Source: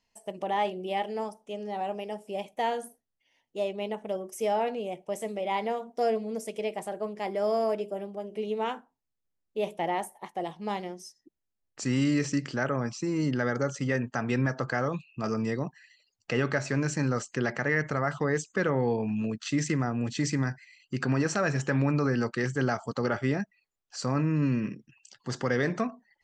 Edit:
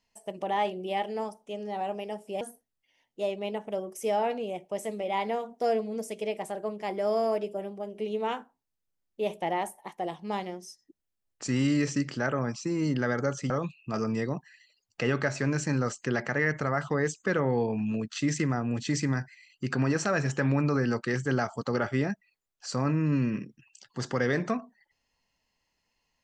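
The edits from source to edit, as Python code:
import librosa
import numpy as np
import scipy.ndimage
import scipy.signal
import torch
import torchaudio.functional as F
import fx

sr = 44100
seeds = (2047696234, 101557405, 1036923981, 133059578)

y = fx.edit(x, sr, fx.cut(start_s=2.41, length_s=0.37),
    fx.cut(start_s=13.87, length_s=0.93), tone=tone)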